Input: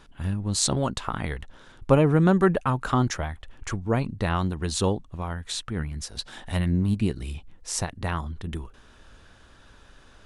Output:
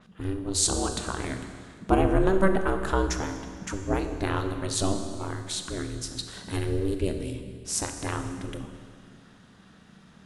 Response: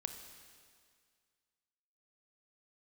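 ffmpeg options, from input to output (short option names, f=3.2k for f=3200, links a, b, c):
-filter_complex "[0:a]aeval=exprs='val(0)*sin(2*PI*190*n/s)':c=same[a];[1:a]atrim=start_sample=2205[b];[a][b]afir=irnorm=-1:irlink=0,adynamicequalizer=threshold=0.00316:dfrequency=5100:dqfactor=0.7:tfrequency=5100:tqfactor=0.7:attack=5:release=100:ratio=0.375:range=3:mode=boostabove:tftype=highshelf,volume=2dB"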